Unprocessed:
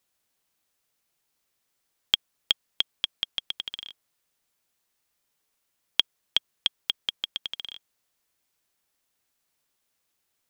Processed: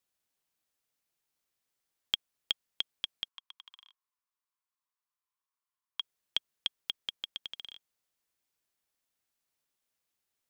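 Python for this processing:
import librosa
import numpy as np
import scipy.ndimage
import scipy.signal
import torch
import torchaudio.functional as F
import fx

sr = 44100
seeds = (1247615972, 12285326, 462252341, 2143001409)

y = fx.ladder_highpass(x, sr, hz=970.0, resonance_pct=75, at=(3.28, 6.0))
y = y * 10.0 ** (-8.0 / 20.0)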